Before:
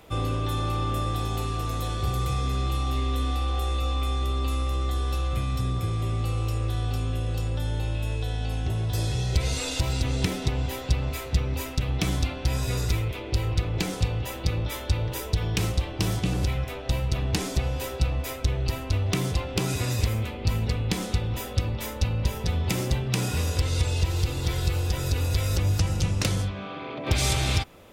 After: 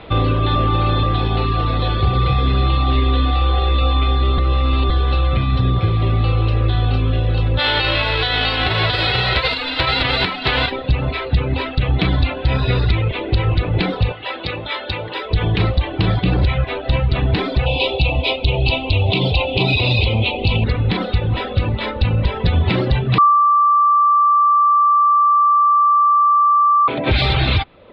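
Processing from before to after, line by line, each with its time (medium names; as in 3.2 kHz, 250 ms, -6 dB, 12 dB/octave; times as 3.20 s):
0.55–1.03 s: reverse
4.38–4.90 s: reverse
7.58–10.70 s: formants flattened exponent 0.3
14.12–15.31 s: high-pass 580 Hz 6 dB/octave
17.66–20.64 s: FFT filter 250 Hz 0 dB, 880 Hz +5 dB, 1.7 kHz -23 dB, 2.5 kHz +11 dB, 3.9 kHz +9 dB, 6.8 kHz +5 dB
23.18–26.88 s: bleep 1.17 kHz -21 dBFS
whole clip: reverb removal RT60 0.8 s; elliptic low-pass 4.1 kHz, stop band 40 dB; loudness maximiser +20.5 dB; trim -6 dB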